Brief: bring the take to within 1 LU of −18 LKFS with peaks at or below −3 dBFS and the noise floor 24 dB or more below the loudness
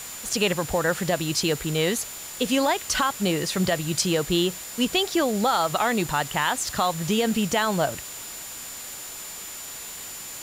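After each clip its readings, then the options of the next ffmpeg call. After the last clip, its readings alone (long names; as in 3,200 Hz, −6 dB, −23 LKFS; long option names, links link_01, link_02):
interfering tone 7,100 Hz; level of the tone −39 dBFS; background noise floor −38 dBFS; target noise floor −49 dBFS; integrated loudness −25.0 LKFS; sample peak −9.5 dBFS; target loudness −18.0 LKFS
→ -af "bandreject=frequency=7100:width=30"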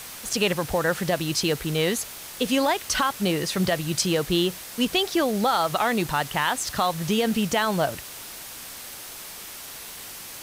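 interfering tone none found; background noise floor −40 dBFS; target noise floor −48 dBFS
→ -af "afftdn=noise_reduction=8:noise_floor=-40"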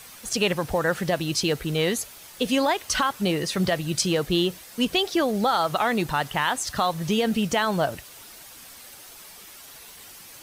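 background noise floor −46 dBFS; target noise floor −49 dBFS
→ -af "afftdn=noise_reduction=6:noise_floor=-46"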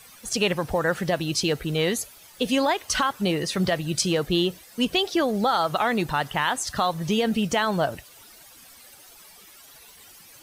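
background noise floor −50 dBFS; integrated loudness −24.5 LKFS; sample peak −10.0 dBFS; target loudness −18.0 LKFS
→ -af "volume=6.5dB"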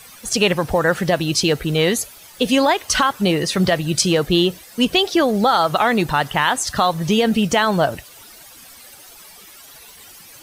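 integrated loudness −18.0 LKFS; sample peak −3.5 dBFS; background noise floor −43 dBFS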